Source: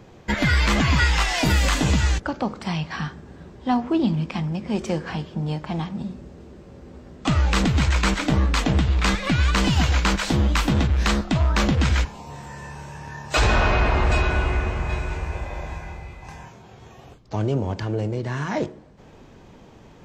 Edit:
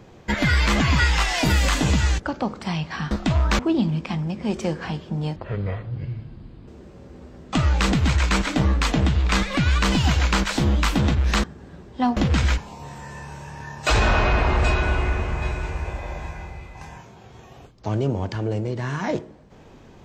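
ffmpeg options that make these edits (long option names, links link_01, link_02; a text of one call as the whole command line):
ffmpeg -i in.wav -filter_complex "[0:a]asplit=7[link_01][link_02][link_03][link_04][link_05][link_06][link_07];[link_01]atrim=end=3.112[link_08];[link_02]atrim=start=11.158:end=11.642[link_09];[link_03]atrim=start=3.838:end=5.614[link_10];[link_04]atrim=start=5.61:end=6.4,asetpts=PTS-STARTPTS,asetrate=26460,aresample=44100[link_11];[link_05]atrim=start=6.396:end=11.162[link_12];[link_06]atrim=start=3.108:end=3.842[link_13];[link_07]atrim=start=11.638[link_14];[link_08][link_09]acrossfade=duration=0.004:curve1=hsin:curve2=hsin[link_15];[link_15][link_10]acrossfade=duration=0.004:curve1=hsin:curve2=hsin[link_16];[link_16][link_11]acrossfade=duration=0.004:curve1=hsin:curve2=hsin[link_17];[link_17][link_12]acrossfade=duration=0.004:curve1=hsin:curve2=hsin[link_18];[link_18][link_13]acrossfade=duration=0.004:curve1=hsin:curve2=hsin[link_19];[link_19][link_14]acrossfade=duration=0.004:curve1=hsin:curve2=hsin" out.wav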